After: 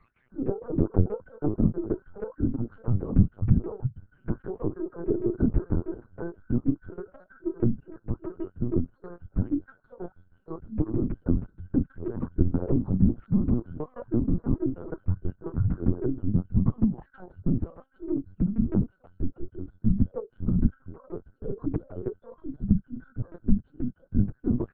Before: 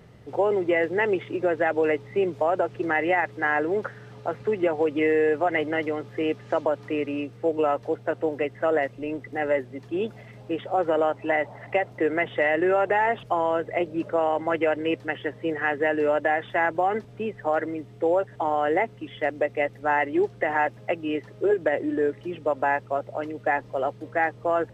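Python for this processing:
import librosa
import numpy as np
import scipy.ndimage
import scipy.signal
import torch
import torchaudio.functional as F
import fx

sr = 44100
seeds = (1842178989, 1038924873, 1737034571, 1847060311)

y = fx.octave_mirror(x, sr, pivot_hz=400.0)
y = fx.noise_reduce_blind(y, sr, reduce_db=18)
y = fx.peak_eq(y, sr, hz=140.0, db=8.0, octaves=0.45)
y = fx.tremolo_shape(y, sr, shape='saw_down', hz=6.3, depth_pct=100)
y = fx.fixed_phaser(y, sr, hz=1400.0, stages=4)
y = fx.lpc_vocoder(y, sr, seeds[0], excitation='pitch_kept', order=8)
y = fx.formant_shift(y, sr, semitones=2)
y = F.gain(torch.from_numpy(y), 6.0).numpy()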